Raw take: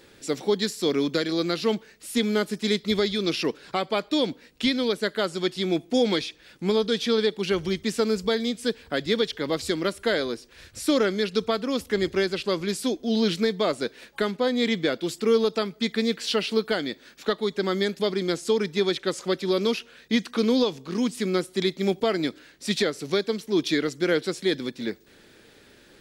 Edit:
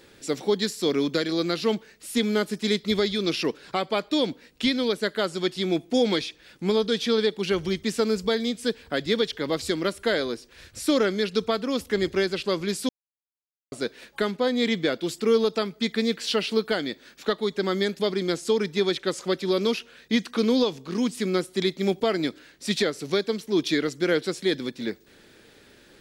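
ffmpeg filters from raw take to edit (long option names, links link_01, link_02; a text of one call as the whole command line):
ffmpeg -i in.wav -filter_complex "[0:a]asplit=3[link_01][link_02][link_03];[link_01]atrim=end=12.89,asetpts=PTS-STARTPTS,afade=type=out:start_time=12.886:duration=0.004:curve=hsin[link_04];[link_02]atrim=start=12.89:end=13.72,asetpts=PTS-STARTPTS,volume=0[link_05];[link_03]atrim=start=13.72,asetpts=PTS-STARTPTS,afade=type=in:duration=0.004:curve=hsin[link_06];[link_04][link_05][link_06]concat=n=3:v=0:a=1" out.wav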